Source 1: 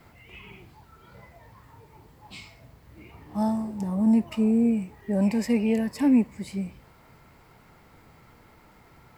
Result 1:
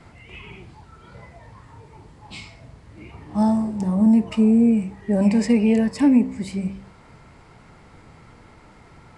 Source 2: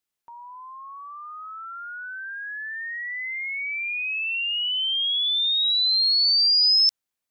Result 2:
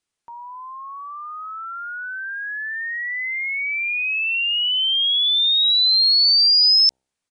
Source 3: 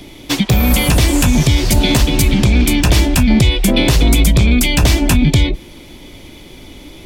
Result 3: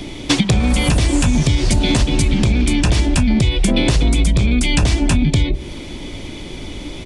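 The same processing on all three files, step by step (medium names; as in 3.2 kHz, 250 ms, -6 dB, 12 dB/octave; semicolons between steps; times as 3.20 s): bass shelf 400 Hz +3 dB; de-hum 64.96 Hz, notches 14; compression 10:1, threshold -16 dBFS; resampled via 22.05 kHz; trim +5 dB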